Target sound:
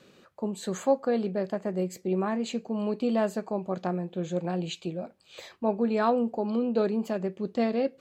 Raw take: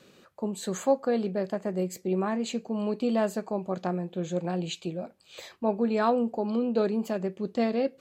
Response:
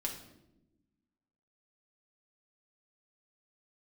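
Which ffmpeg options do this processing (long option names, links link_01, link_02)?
-af "highshelf=frequency=7200:gain=-6"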